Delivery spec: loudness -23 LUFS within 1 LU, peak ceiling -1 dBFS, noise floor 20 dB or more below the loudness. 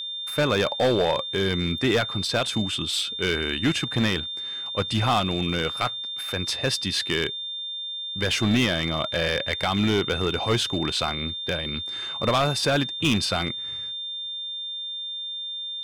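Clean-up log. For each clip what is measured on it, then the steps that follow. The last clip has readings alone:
clipped samples 1.2%; clipping level -16.0 dBFS; steady tone 3.6 kHz; tone level -30 dBFS; loudness -25.0 LUFS; peak level -16.0 dBFS; loudness target -23.0 LUFS
-> clip repair -16 dBFS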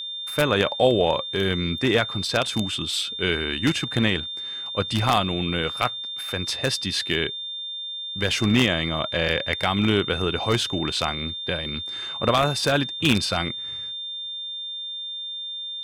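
clipped samples 0.0%; steady tone 3.6 kHz; tone level -30 dBFS
-> band-stop 3.6 kHz, Q 30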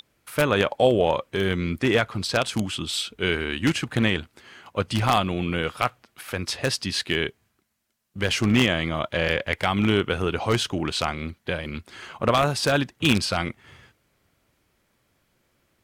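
steady tone not found; loudness -24.0 LUFS; peak level -6.0 dBFS; loudness target -23.0 LUFS
-> trim +1 dB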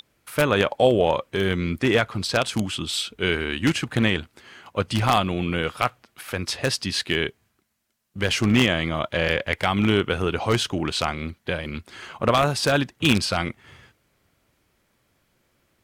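loudness -23.0 LUFS; peak level -5.0 dBFS; noise floor -69 dBFS

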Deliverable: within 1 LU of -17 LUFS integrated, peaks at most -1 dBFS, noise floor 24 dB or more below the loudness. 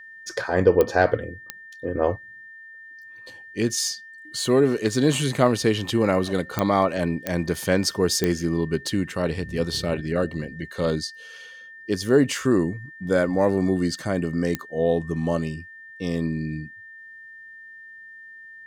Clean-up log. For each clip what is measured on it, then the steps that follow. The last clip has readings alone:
clicks found 6; steady tone 1.8 kHz; tone level -41 dBFS; loudness -23.5 LUFS; peak level -3.5 dBFS; loudness target -17.0 LUFS
-> de-click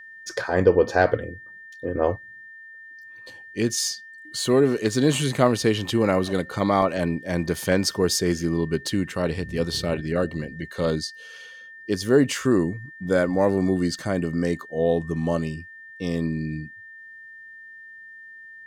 clicks found 0; steady tone 1.8 kHz; tone level -41 dBFS
-> band-stop 1.8 kHz, Q 30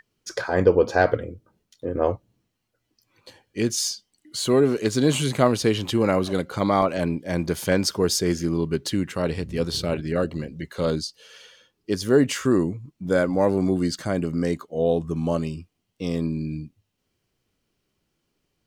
steady tone not found; loudness -23.5 LUFS; peak level -4.0 dBFS; loudness target -17.0 LUFS
-> trim +6.5 dB; peak limiter -1 dBFS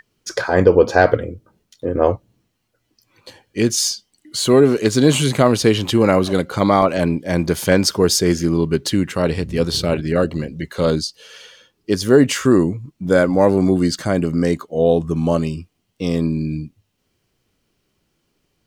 loudness -17.5 LUFS; peak level -1.0 dBFS; noise floor -70 dBFS

